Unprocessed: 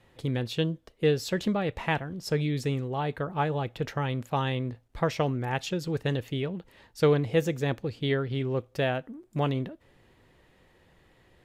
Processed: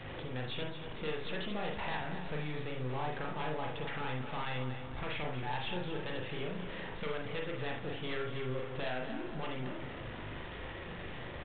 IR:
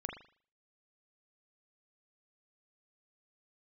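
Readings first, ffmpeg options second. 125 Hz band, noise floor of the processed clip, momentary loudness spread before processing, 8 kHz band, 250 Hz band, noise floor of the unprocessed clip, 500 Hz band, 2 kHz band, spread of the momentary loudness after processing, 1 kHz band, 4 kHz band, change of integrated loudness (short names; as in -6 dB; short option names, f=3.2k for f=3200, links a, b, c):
-11.5 dB, -44 dBFS, 6 LU, under -35 dB, -11.0 dB, -62 dBFS, -10.5 dB, -4.5 dB, 6 LU, -6.5 dB, -5.0 dB, -10.0 dB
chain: -filter_complex "[0:a]aeval=exprs='val(0)+0.5*0.0158*sgn(val(0))':c=same,acrossover=split=590|1100[a][b][c];[a]acompressor=threshold=-36dB:ratio=6[d];[b]alimiter=level_in=7.5dB:limit=-24dB:level=0:latency=1,volume=-7.5dB[e];[d][e][c]amix=inputs=3:normalize=0,aeval=exprs='0.158*(cos(1*acos(clip(val(0)/0.158,-1,1)))-cos(1*PI/2))+0.0631*(cos(4*acos(clip(val(0)/0.158,-1,1)))-cos(4*PI/2))+0.0282*(cos(5*acos(clip(val(0)/0.158,-1,1)))-cos(5*PI/2))+0.02*(cos(7*acos(clip(val(0)/0.158,-1,1)))-cos(7*PI/2))':c=same,aresample=8000,asoftclip=type=tanh:threshold=-28dB,aresample=44100,aecho=1:1:233|466|699|932|1165|1398:0.335|0.174|0.0906|0.0471|0.0245|0.0127[f];[1:a]atrim=start_sample=2205,atrim=end_sample=3969[g];[f][g]afir=irnorm=-1:irlink=0,volume=-2.5dB"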